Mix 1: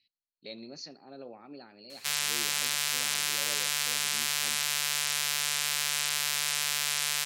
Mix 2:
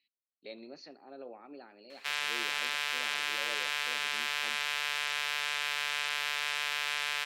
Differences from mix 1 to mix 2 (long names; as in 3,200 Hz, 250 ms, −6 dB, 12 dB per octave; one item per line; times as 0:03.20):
background: send +10.5 dB
master: add three-way crossover with the lows and the highs turned down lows −18 dB, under 240 Hz, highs −19 dB, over 3,500 Hz